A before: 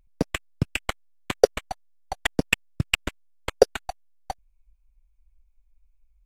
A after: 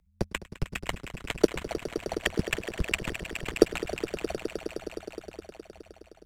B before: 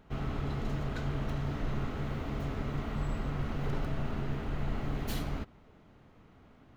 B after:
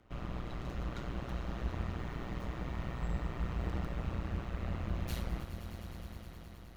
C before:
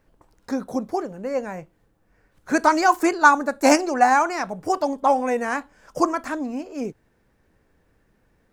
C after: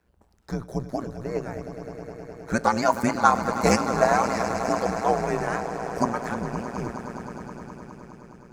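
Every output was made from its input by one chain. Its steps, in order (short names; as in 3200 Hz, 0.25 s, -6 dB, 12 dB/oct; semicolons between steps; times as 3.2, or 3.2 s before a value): swelling echo 0.104 s, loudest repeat 5, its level -14 dB; frequency shift -88 Hz; AM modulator 120 Hz, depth 65%; gain -1 dB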